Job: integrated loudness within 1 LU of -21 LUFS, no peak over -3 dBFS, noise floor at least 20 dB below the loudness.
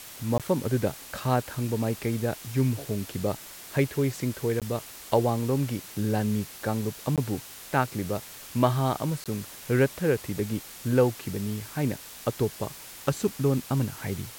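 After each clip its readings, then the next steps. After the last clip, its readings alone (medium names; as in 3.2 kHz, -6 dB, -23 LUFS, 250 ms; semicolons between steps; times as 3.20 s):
dropouts 4; longest dropout 17 ms; noise floor -44 dBFS; noise floor target -49 dBFS; loudness -28.5 LUFS; peak level -6.5 dBFS; loudness target -21.0 LUFS
-> interpolate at 0.38/4.60/7.16/9.24 s, 17 ms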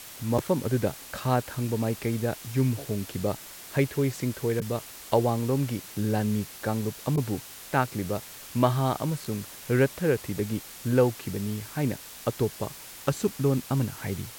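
dropouts 0; noise floor -44 dBFS; noise floor target -49 dBFS
-> noise reduction 6 dB, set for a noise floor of -44 dBFS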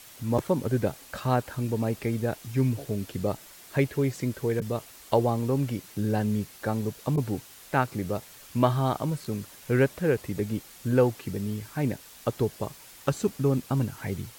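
noise floor -49 dBFS; loudness -28.5 LUFS; peak level -7.0 dBFS; loudness target -21.0 LUFS
-> trim +7.5 dB; peak limiter -3 dBFS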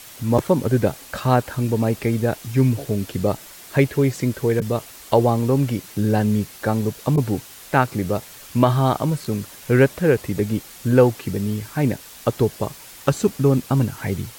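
loudness -21.0 LUFS; peak level -3.0 dBFS; noise floor -42 dBFS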